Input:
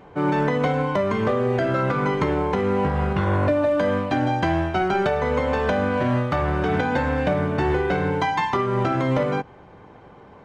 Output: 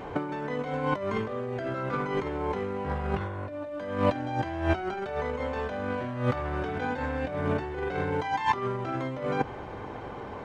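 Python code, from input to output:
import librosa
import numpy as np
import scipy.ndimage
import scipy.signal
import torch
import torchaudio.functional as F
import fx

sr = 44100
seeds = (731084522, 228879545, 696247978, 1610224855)

y = fx.peak_eq(x, sr, hz=170.0, db=-9.5, octaves=0.3)
y = fx.over_compress(y, sr, threshold_db=-28.0, ratio=-0.5)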